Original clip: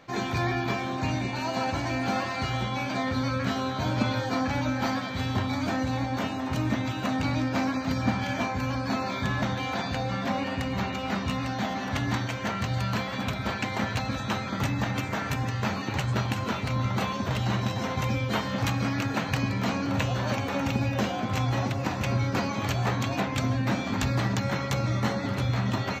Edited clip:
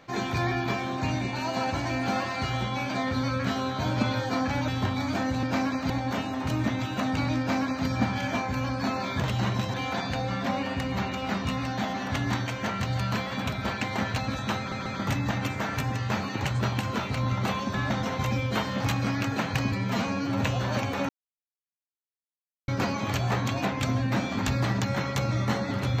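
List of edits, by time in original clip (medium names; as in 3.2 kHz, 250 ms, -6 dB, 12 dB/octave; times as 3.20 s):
4.68–5.21 s: delete
7.45–7.92 s: copy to 5.96 s
9.26–9.55 s: swap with 17.27–17.81 s
14.39 s: stutter 0.14 s, 3 plays
19.50–19.96 s: stretch 1.5×
20.64–22.23 s: mute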